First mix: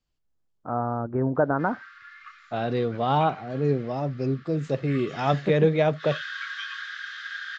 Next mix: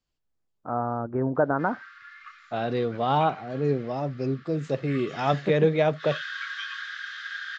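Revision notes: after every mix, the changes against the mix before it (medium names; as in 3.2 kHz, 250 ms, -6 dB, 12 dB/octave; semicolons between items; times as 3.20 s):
master: add bass shelf 160 Hz -4.5 dB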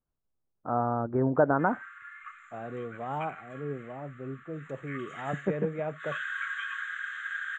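second voice -11.0 dB; background: remove distance through air 210 m; master: add Butterworth band-stop 5 kHz, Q 0.6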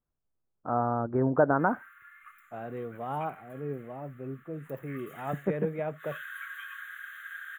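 background -7.5 dB; master: remove Chebyshev low-pass 7.6 kHz, order 5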